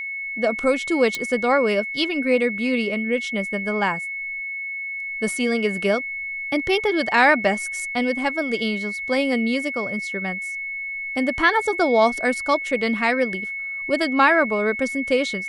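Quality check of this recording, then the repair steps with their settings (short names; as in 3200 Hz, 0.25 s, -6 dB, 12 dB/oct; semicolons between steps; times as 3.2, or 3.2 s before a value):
tone 2200 Hz -27 dBFS
1.15 pop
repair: de-click; notch 2200 Hz, Q 30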